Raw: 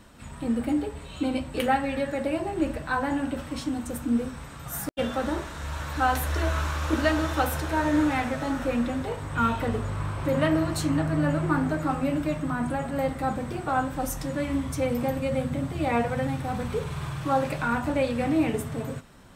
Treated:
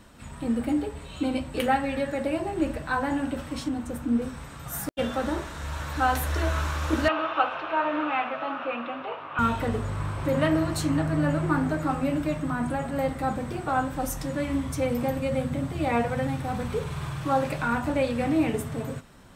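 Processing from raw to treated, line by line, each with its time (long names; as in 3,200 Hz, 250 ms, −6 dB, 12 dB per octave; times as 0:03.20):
0:03.68–0:04.22: high-shelf EQ 3,600 Hz −7.5 dB
0:07.08–0:09.39: loudspeaker in its box 450–3,100 Hz, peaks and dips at 470 Hz −4 dB, 670 Hz +4 dB, 1,200 Hz +8 dB, 1,900 Hz −6 dB, 2,700 Hz +8 dB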